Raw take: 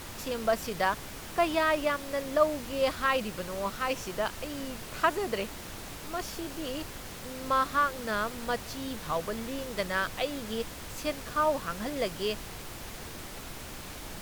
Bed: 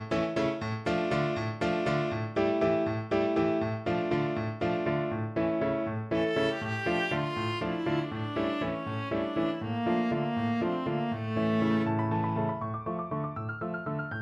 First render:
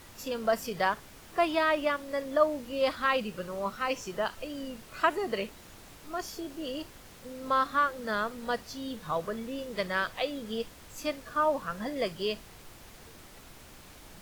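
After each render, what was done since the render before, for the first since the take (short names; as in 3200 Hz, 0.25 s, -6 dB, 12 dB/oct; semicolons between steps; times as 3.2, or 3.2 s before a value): noise print and reduce 9 dB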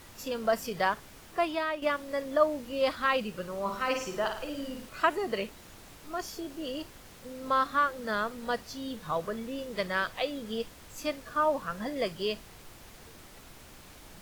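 1.21–1.82 fade out, to -8.5 dB; 3.63–4.89 flutter echo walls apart 9.2 m, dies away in 0.56 s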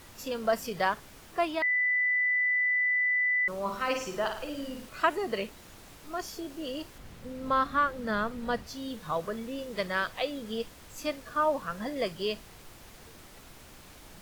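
1.62–3.48 bleep 1990 Hz -23.5 dBFS; 6.98–8.67 tone controls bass +8 dB, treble -5 dB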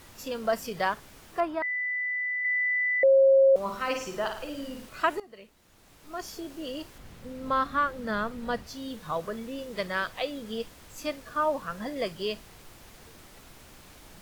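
1.4–2.45 resonant high shelf 2100 Hz -10.5 dB, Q 1.5; 3.03–3.56 bleep 540 Hz -15 dBFS; 5.2–6.29 fade in quadratic, from -18 dB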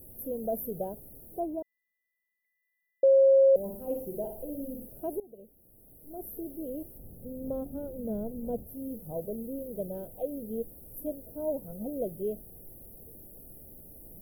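inverse Chebyshev band-stop 1100–7400 Hz, stop band 40 dB; high shelf 3700 Hz +10.5 dB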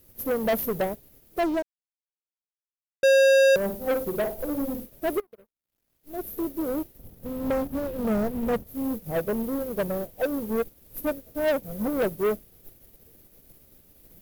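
sample leveller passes 5; upward expander 2.5:1, over -38 dBFS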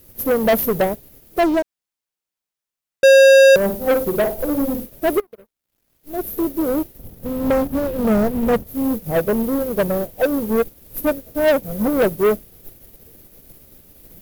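gain +8.5 dB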